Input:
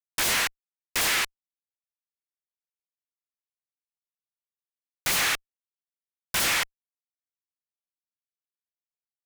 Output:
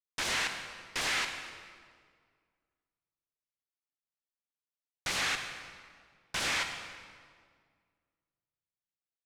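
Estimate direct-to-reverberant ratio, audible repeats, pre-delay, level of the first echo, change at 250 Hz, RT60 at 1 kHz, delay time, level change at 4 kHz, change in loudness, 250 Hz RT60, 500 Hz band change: 5.5 dB, no echo, 37 ms, no echo, -5.5 dB, 1.8 s, no echo, -6.0 dB, -8.0 dB, 2.2 s, -5.5 dB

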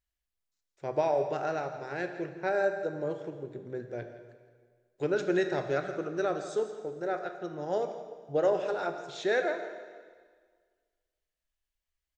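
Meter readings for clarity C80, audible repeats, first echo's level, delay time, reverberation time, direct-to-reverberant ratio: 9.0 dB, 1, -14.0 dB, 166 ms, 1.7 s, 6.5 dB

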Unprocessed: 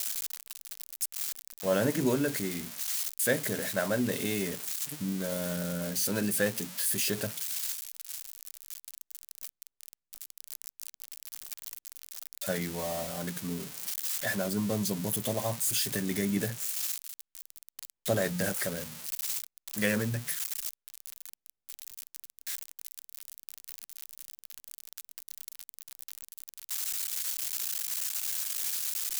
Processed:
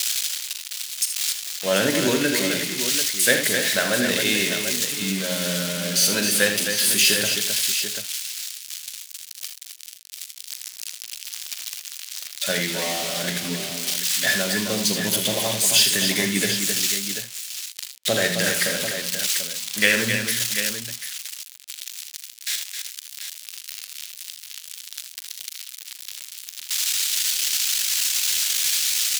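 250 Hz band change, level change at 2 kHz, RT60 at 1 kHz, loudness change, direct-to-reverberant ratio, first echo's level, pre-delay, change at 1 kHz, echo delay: +5.0 dB, +14.0 dB, no reverb, +10.5 dB, no reverb, -11.5 dB, no reverb, +7.5 dB, 41 ms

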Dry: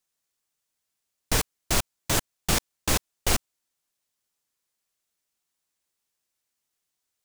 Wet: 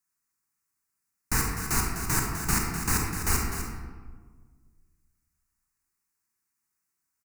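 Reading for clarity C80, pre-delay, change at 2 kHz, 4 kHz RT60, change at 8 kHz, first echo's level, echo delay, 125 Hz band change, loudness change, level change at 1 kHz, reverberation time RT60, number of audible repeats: 3.0 dB, 30 ms, +0.5 dB, 0.85 s, -0.5 dB, -9.5 dB, 252 ms, +2.0 dB, -1.0 dB, +0.5 dB, 1.5 s, 1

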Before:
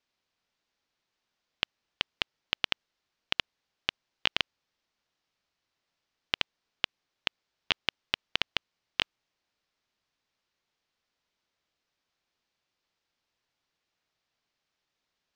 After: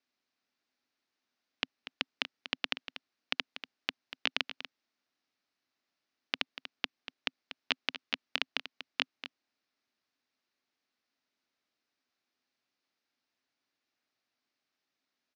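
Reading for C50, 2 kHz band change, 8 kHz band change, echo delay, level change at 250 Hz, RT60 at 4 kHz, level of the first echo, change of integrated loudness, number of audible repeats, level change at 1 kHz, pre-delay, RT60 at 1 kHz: no reverb, -2.5 dB, -3.5 dB, 240 ms, +0.5 dB, no reverb, -12.0 dB, -4.0 dB, 1, -3.5 dB, no reverb, no reverb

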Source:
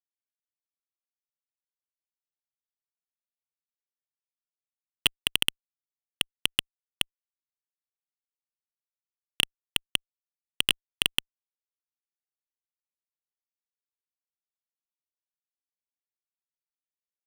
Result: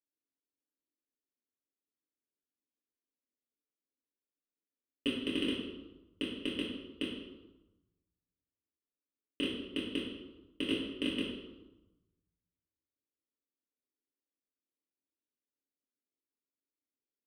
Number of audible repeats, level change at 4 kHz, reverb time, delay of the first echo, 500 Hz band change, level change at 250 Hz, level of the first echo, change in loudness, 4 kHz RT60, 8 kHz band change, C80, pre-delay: no echo, -12.0 dB, 1.1 s, no echo, +7.5 dB, +11.5 dB, no echo, -9.0 dB, 0.75 s, -22.5 dB, 4.5 dB, 4 ms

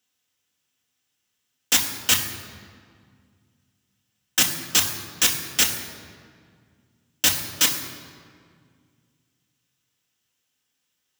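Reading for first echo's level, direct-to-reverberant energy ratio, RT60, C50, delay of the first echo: no echo, 2.0 dB, 2.0 s, 8.0 dB, no echo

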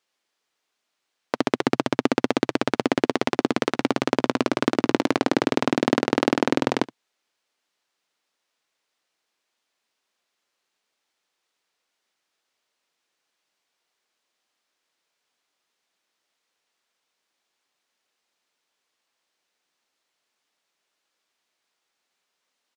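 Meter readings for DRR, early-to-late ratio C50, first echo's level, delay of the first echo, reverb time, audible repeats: no reverb, no reverb, -20.5 dB, 71 ms, no reverb, 1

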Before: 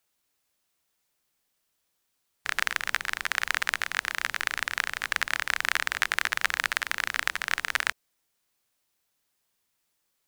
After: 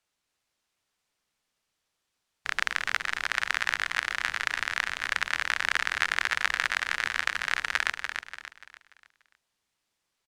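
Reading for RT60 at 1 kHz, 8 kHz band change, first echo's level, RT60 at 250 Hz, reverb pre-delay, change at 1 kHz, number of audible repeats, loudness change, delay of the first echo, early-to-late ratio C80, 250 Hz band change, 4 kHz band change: no reverb, -3.5 dB, -6.5 dB, no reverb, no reverb, 0.0 dB, 4, 0.0 dB, 291 ms, no reverb, -1.0 dB, -0.5 dB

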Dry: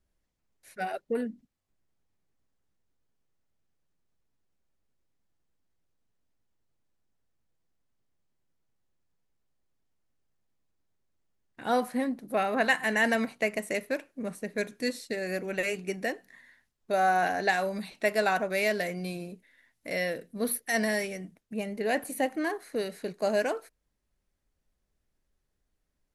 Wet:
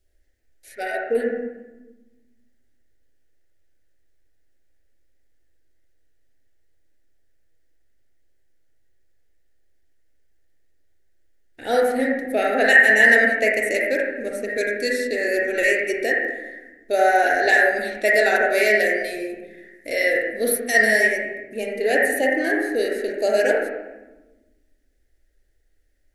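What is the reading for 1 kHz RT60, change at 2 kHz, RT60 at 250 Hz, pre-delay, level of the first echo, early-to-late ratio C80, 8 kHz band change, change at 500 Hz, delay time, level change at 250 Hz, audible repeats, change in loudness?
1.0 s, +14.0 dB, 1.8 s, 33 ms, no echo, 2.0 dB, +8.0 dB, +10.0 dB, no echo, +4.5 dB, no echo, +11.0 dB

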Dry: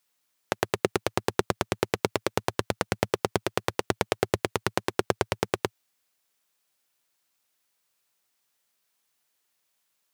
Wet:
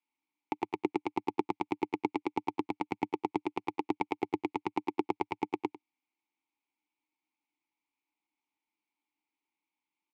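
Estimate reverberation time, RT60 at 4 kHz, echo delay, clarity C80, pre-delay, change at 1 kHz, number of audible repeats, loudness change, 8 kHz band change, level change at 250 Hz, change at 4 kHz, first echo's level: no reverb, no reverb, 98 ms, no reverb, no reverb, -3.0 dB, 1, -6.0 dB, under -25 dB, -0.5 dB, -16.5 dB, -17.0 dB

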